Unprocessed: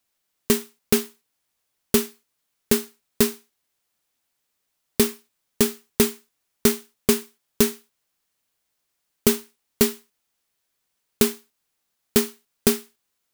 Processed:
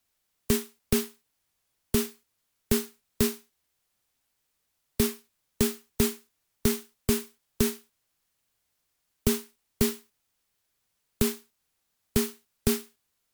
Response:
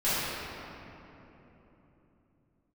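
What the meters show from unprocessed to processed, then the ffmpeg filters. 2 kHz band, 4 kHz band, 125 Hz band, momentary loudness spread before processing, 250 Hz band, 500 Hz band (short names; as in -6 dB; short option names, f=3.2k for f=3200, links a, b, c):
-6.5 dB, -6.5 dB, 0.0 dB, 8 LU, -4.5 dB, -6.5 dB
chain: -filter_complex "[0:a]acrossover=split=130[a][b];[a]acontrast=73[c];[b]alimiter=limit=-12.5dB:level=0:latency=1:release=52[d];[c][d]amix=inputs=2:normalize=0,volume=-1dB" -ar 44100 -c:a ac3 -b:a 128k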